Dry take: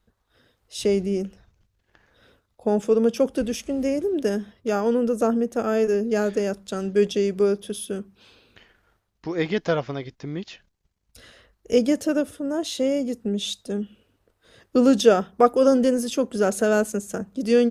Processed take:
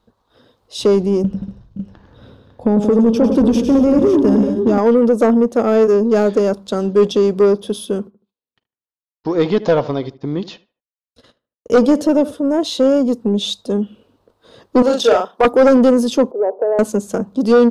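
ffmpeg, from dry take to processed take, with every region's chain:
-filter_complex "[0:a]asettb=1/sr,asplit=3[s0][s1][s2];[s0]atrim=end=1.244[s3];[s1]atrim=start=1.24:end=4.78,asetpts=PTS-STARTPTS,afade=t=in:d=0.004:c=qsin,afade=t=out:st=3.536:d=0.004:c=qsin,bass=f=250:g=14,treble=f=4000:g=-3,acompressor=threshold=0.141:ratio=10:attack=3.2:release=140:knee=1:detection=peak,aecho=1:1:101|178|239|521|551:0.376|0.299|0.188|0.168|0.335,atrim=end_sample=156114[s4];[s2]atrim=start=4.776[s5];[s3][s4]acrossfade=d=0.004:c1=hsin:c2=qsin[s6];[s6][s5]acrossfade=d=0.004:c1=qsin:c2=hsin,asettb=1/sr,asplit=3[s7][s8][s9];[s7]atrim=end=7.994[s10];[s8]atrim=start=7.99:end=12.34,asetpts=PTS-STARTPTS,afade=t=in:d=0.004:c=qsin,afade=t=out:st=4.346:d=0.004:c=qsin,agate=range=0.00282:threshold=0.00398:ratio=16:release=100:detection=peak,asplit=2[s11][s12];[s12]adelay=76,lowpass=f=2200:p=1,volume=0.126,asplit=2[s13][s14];[s14]adelay=76,lowpass=f=2200:p=1,volume=0.3,asplit=2[s15][s16];[s16]adelay=76,lowpass=f=2200:p=1,volume=0.3[s17];[s11][s13][s15][s17]amix=inputs=4:normalize=0,atrim=end_sample=191835[s18];[s9]atrim=start=12.336[s19];[s10][s18]acrossfade=d=0.004:c1=hsin:c2=qsin[s20];[s20][s19]acrossfade=d=0.004:c1=qsin:c2=hsin,asettb=1/sr,asplit=3[s21][s22][s23];[s21]atrim=end=14.824[s24];[s22]atrim=start=14.82:end=15.45,asetpts=PTS-STARTPTS,afade=t=in:d=0.004:c=qsin,afade=t=out:st=0.626:d=0.004:c=qsin,highpass=530,tremolo=f=34:d=0.4,asplit=2[s25][s26];[s26]adelay=43,volume=0.631[s27];[s25][s27]amix=inputs=2:normalize=0,atrim=end_sample=27783[s28];[s23]atrim=start=15.446[s29];[s24][s28]acrossfade=d=0.004:c1=hsin:c2=qsin[s30];[s30][s29]acrossfade=d=0.004:c1=qsin:c2=hsin,asettb=1/sr,asplit=3[s31][s32][s33];[s31]atrim=end=16.314[s34];[s32]atrim=start=16.31:end=16.79,asetpts=PTS-STARTPTS,afade=t=in:d=0.004:c=qsin,afade=t=out:st=0.476:d=0.004:c=qsin,asuperpass=centerf=590:order=8:qfactor=0.99,acompressor=threshold=0.0631:ratio=3:attack=3.2:release=140:knee=1:detection=peak[s35];[s33]atrim=start=16.786[s36];[s34][s35]acrossfade=d=0.004:c1=hsin:c2=qsin[s37];[s37][s36]acrossfade=d=0.004:c1=qsin:c2=hsin,equalizer=f=125:t=o:w=1:g=6,equalizer=f=250:t=o:w=1:g=9,equalizer=f=500:t=o:w=1:g=8,equalizer=f=1000:t=o:w=1:g=12,equalizer=f=2000:t=o:w=1:g=-4,equalizer=f=4000:t=o:w=1:g=9,acontrast=34,volume=0.531"

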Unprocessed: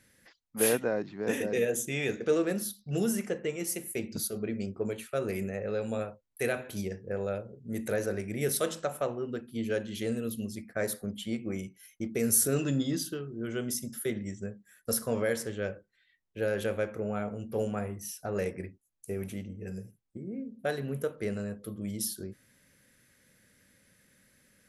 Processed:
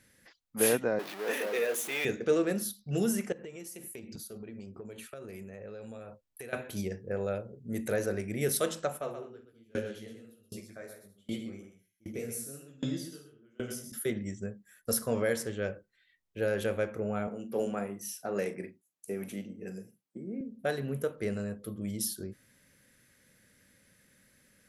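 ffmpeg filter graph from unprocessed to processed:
-filter_complex "[0:a]asettb=1/sr,asplit=3[s0][s1][s2];[s0]atrim=end=0.994[s3];[s1]atrim=start=0.99:end=2.05,asetpts=PTS-STARTPTS,afade=t=in:d=0.004:c=qsin,afade=t=out:st=1.056:d=0.004:c=qsin,aeval=exprs='val(0)+0.5*0.0237*sgn(val(0))':c=same,highpass=520,equalizer=f=7300:t=o:w=1:g=-7[s4];[s2]atrim=start=2.046[s5];[s3][s4]acrossfade=d=0.004:c1=hsin:c2=qsin[s6];[s6][s5]acrossfade=d=0.004:c1=qsin:c2=hsin,asettb=1/sr,asplit=3[s7][s8][s9];[s7]atrim=end=3.324[s10];[s8]atrim=start=3.32:end=6.53,asetpts=PTS-STARTPTS,afade=t=in:d=0.004:c=qsin,afade=t=out:st=3.206:d=0.004:c=qsin,bandreject=f=2100:w=22,acompressor=threshold=0.01:ratio=12:attack=3.2:release=140:knee=1:detection=peak[s11];[s9]atrim=start=6.526[s12];[s10][s11]acrossfade=d=0.004:c1=hsin:c2=qsin[s13];[s13][s12]acrossfade=d=0.004:c1=qsin:c2=hsin,asettb=1/sr,asplit=3[s14][s15][s16];[s14]atrim=end=8.984[s17];[s15]atrim=start=8.98:end=13.92,asetpts=PTS-STARTPTS,afade=t=in:d=0.004:c=qsin,afade=t=out:st=4.936:d=0.004:c=qsin,flanger=delay=17.5:depth=5:speed=3,aecho=1:1:50|126|201|239:0.473|0.708|0.316|0.126,atrim=end_sample=217854,aeval=exprs='val(0)*pow(10,-30*if(lt(mod(1.3*n/s,1),2*abs(1.3)/1000),1-mod(1.3*n/s,1)/(2*abs(1.3)/1000),(mod(1.3*n/s,1)-2*abs(1.3)/1000)/(1-2*abs(1.3)/1000))/20)':c=same[s18];[s16]atrim=start=13.916[s19];[s17][s18]acrossfade=d=0.004:c1=hsin:c2=qsin[s20];[s20][s19]acrossfade=d=0.004:c1=qsin:c2=hsin,asettb=1/sr,asplit=3[s21][s22][s23];[s21]atrim=end=17.274[s24];[s22]atrim=start=17.27:end=20.41,asetpts=PTS-STARTPTS,afade=t=in:d=0.004:c=qsin,afade=t=out:st=3.136:d=0.004:c=qsin,highpass=f=160:w=0.5412,highpass=f=160:w=1.3066,asplit=2[s25][s26];[s26]adelay=40,volume=0.237[s27];[s25][s27]amix=inputs=2:normalize=0,atrim=end_sample=138474[s28];[s23]atrim=start=20.406[s29];[s24][s28]acrossfade=d=0.004:c1=hsin:c2=qsin[s30];[s30][s29]acrossfade=d=0.004:c1=qsin:c2=hsin"

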